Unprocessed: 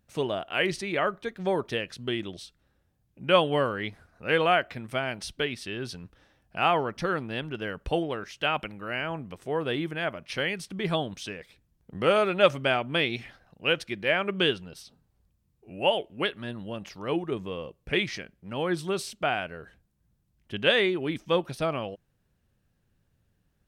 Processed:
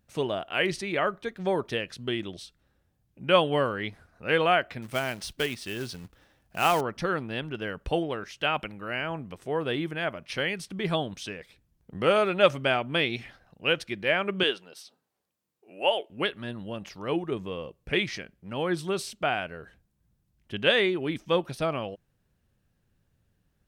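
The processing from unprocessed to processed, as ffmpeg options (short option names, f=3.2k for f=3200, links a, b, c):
-filter_complex "[0:a]asettb=1/sr,asplit=3[a][b][c];[a]atrim=end=4.824[d];[b]atrim=start=4.82:end=6.81,asetpts=PTS-STARTPTS,afade=t=in:d=0.004:c=qsin,afade=t=out:st=1.986:d=0.004:c=qsin,acrusher=bits=3:mode=log:mix=0:aa=0.000001[e];[c]atrim=start=6.806[f];[d][e]acrossfade=d=0.004:c1=hsin:c2=qsin[g];[g][f]acrossfade=d=0.004:c1=qsin:c2=hsin,asettb=1/sr,asplit=3[h][i][j];[h]atrim=end=14.434[k];[i]atrim=start=14.43:end=16.1,asetpts=PTS-STARTPTS,afade=t=in:d=0.004:c=qsin,afade=t=out:st=1.666:d=0.004:c=qsin,highpass=390[l];[j]atrim=start=16.096[m];[k][l]acrossfade=d=0.004:c1=hsin:c2=qsin[n];[n][m]acrossfade=d=0.004:c1=qsin:c2=hsin"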